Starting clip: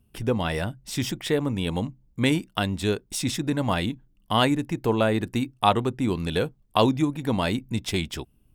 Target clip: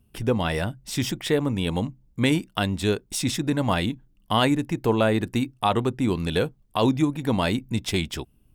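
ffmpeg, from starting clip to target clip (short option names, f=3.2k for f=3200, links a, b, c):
-af "alimiter=level_in=9.5dB:limit=-1dB:release=50:level=0:latency=1,volume=-8dB"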